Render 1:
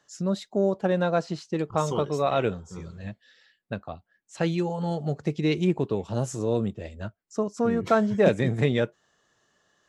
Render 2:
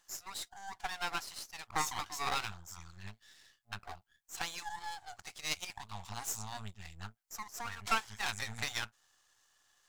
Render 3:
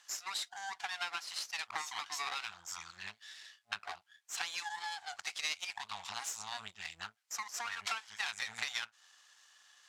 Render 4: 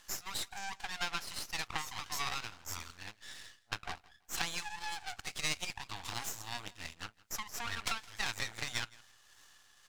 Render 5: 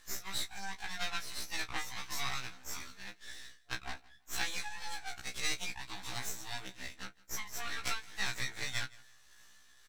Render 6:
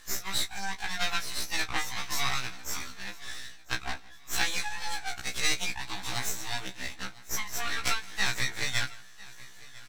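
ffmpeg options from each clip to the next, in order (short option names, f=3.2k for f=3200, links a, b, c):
-af "afftfilt=real='re*(1-between(b*sr/4096,110,700))':imag='im*(1-between(b*sr/4096,110,700))':win_size=4096:overlap=0.75,aeval=exprs='max(val(0),0)':c=same,bass=f=250:g=-5,treble=f=4k:g=7"
-af "acompressor=threshold=-41dB:ratio=16,bandpass=f=2.8k:t=q:w=0.58:csg=0,volume=10.5dB"
-af "aeval=exprs='max(val(0),0)':c=same,tremolo=f=1.8:d=0.39,aecho=1:1:165|330:0.075|0.018,volume=6dB"
-filter_complex "[0:a]asplit=2[a][b];[b]adelay=16,volume=-8dB[c];[a][c]amix=inputs=2:normalize=0,afftfilt=real='re*1.73*eq(mod(b,3),0)':imag='im*1.73*eq(mod(b,3),0)':win_size=2048:overlap=0.75,volume=1.5dB"
-af "aecho=1:1:999|1998|2997:0.0891|0.0357|0.0143,volume=7.5dB"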